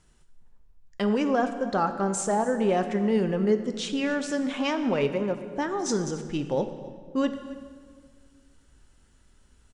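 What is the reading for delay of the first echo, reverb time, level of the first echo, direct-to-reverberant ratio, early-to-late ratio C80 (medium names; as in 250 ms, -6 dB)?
270 ms, 1.7 s, -18.5 dB, 8.0 dB, 10.5 dB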